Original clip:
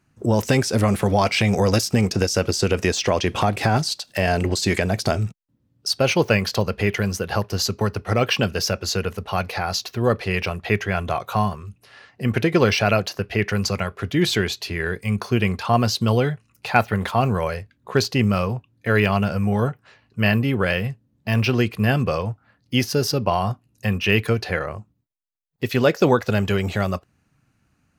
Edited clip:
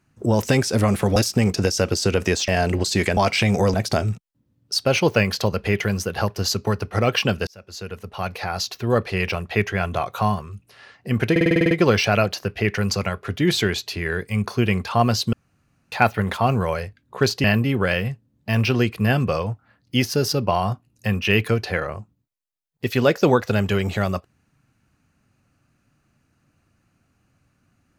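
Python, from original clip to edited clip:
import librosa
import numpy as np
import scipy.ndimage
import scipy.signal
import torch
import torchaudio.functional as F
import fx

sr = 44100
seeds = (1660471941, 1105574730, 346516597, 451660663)

y = fx.edit(x, sr, fx.move(start_s=1.16, length_s=0.57, to_s=4.88),
    fx.cut(start_s=3.05, length_s=1.14),
    fx.fade_in_span(start_s=8.61, length_s=1.72, curve='qsin'),
    fx.stutter(start_s=12.45, slice_s=0.05, count=9),
    fx.room_tone_fill(start_s=16.07, length_s=0.59),
    fx.cut(start_s=18.18, length_s=2.05), tone=tone)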